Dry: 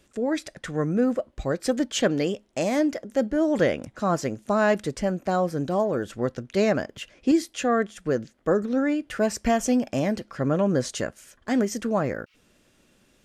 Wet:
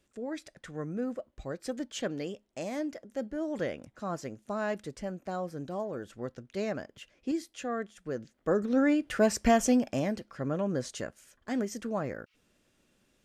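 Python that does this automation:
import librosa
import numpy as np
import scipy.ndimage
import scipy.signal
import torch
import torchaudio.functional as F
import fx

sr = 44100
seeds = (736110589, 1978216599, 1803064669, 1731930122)

y = fx.gain(x, sr, db=fx.line((8.08, -11.5), (8.83, -1.0), (9.6, -1.0), (10.29, -8.5)))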